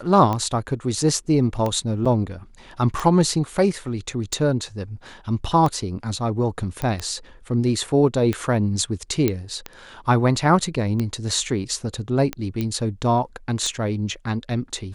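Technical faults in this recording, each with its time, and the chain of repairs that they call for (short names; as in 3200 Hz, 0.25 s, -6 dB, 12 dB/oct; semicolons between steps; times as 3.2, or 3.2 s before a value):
tick 45 rpm -12 dBFS
2.05–2.06 gap 5.5 ms
6.82 pop -13 dBFS
9.28 pop -7 dBFS
12.61 pop -13 dBFS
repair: de-click; interpolate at 2.05, 5.5 ms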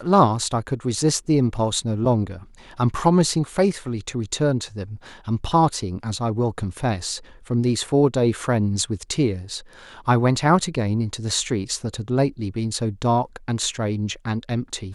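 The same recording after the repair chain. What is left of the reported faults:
6.82 pop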